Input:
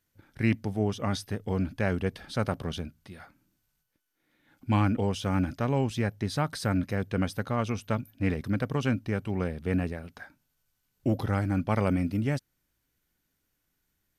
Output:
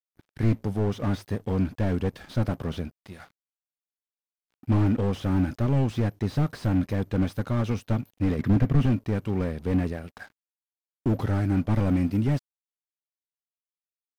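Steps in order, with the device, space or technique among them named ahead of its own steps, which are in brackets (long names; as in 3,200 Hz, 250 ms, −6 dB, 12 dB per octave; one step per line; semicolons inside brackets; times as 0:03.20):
0:08.39–0:08.86: octave-band graphic EQ 125/250/2,000/8,000 Hz +5/+7/+11/−11 dB
early transistor amplifier (dead-zone distortion −55 dBFS; slew-rate limiting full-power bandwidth 17 Hz)
level +4.5 dB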